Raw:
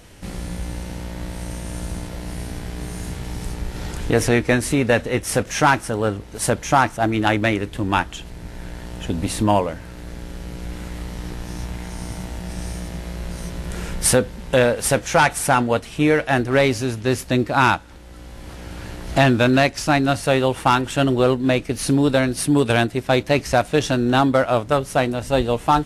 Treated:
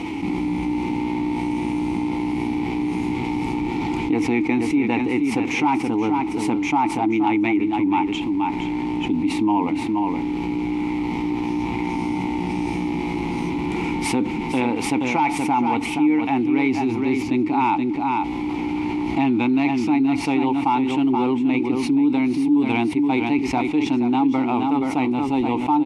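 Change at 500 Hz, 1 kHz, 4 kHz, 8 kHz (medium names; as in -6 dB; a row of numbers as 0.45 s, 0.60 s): -7.5 dB, -1.0 dB, -6.5 dB, -12.5 dB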